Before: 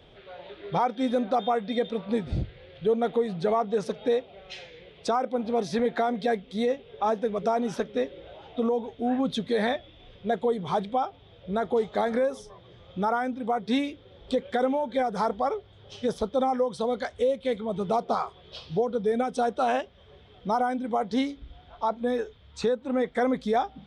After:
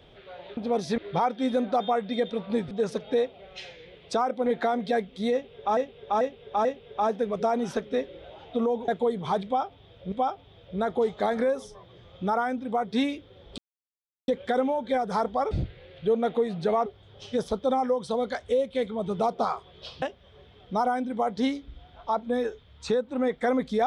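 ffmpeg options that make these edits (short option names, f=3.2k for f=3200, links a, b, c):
-filter_complex "[0:a]asplit=14[a][b][c][d][e][f][g][h][i][j][k][l][m][n];[a]atrim=end=0.572[o];[b]atrim=start=5.398:end=5.812[p];[c]atrim=start=0.568:end=2.302[q];[d]atrim=start=3.648:end=5.402[r];[e]atrim=start=5.808:end=7.122[s];[f]atrim=start=6.678:end=7.122[t];[g]atrim=start=6.678:end=7.122[u];[h]atrim=start=6.678:end=8.912[v];[i]atrim=start=10.298:end=11.542[w];[j]atrim=start=10.868:end=14.33,asetpts=PTS-STARTPTS,afade=t=out:st=3.458:d=0.004:c=hsin,apad=pad_dur=0.7[x];[k]atrim=start=14.33:end=15.562,asetpts=PTS-STARTPTS,afade=t=in:d=0.004:c=hsin[y];[l]atrim=start=2.298:end=3.652[z];[m]atrim=start=15.558:end=18.722[aa];[n]atrim=start=19.758[ab];[o][p]acrossfade=d=0.004:c1=hsin:c2=hsin[ac];[ac][q]acrossfade=d=0.004:c1=hsin:c2=hsin[ad];[ad][r]acrossfade=d=0.004:c1=hsin:c2=hsin[ae];[ae][s]acrossfade=d=0.004:c1=hsin:c2=hsin[af];[af][t]acrossfade=d=0.004:c1=hsin:c2=hsin[ag];[ag][u]acrossfade=d=0.004:c1=hsin:c2=hsin[ah];[ah][v]acrossfade=d=0.004:c1=hsin:c2=hsin[ai];[ai][w]acrossfade=d=0.004:c1=hsin:c2=hsin[aj];[x][y]concat=n=2:v=0:a=1[ak];[aj][ak]acrossfade=d=0.004:c1=hsin:c2=hsin[al];[al][z]acrossfade=d=0.004:c1=hsin:c2=hsin[am];[am][aa]acrossfade=d=0.004:c1=hsin:c2=hsin[an];[an][ab]acrossfade=d=0.004:c1=hsin:c2=hsin"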